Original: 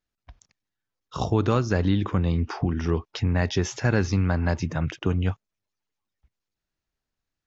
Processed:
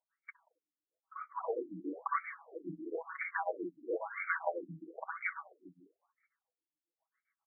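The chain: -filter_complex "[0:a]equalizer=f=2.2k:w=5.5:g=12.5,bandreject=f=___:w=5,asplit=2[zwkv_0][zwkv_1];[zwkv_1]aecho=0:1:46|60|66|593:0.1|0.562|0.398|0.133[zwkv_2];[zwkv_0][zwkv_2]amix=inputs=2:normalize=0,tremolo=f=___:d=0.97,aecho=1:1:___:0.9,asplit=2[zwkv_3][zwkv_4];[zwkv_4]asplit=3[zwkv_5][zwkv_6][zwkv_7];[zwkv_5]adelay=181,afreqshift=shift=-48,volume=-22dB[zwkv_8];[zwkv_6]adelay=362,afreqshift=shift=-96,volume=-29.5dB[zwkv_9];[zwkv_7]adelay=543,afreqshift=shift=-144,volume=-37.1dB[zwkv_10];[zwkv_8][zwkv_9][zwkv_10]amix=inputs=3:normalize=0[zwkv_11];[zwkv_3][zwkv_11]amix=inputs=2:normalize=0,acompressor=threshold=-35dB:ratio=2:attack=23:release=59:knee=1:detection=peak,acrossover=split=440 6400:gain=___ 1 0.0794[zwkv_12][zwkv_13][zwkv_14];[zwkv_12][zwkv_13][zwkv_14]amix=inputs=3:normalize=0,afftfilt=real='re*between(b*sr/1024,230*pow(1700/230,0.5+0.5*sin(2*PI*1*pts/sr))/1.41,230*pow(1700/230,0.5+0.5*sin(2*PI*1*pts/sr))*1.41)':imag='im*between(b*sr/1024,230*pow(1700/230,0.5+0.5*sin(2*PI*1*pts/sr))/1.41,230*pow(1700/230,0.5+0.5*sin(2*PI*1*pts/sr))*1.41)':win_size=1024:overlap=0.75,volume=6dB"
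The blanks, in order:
210, 7.4, 6.2, 0.0891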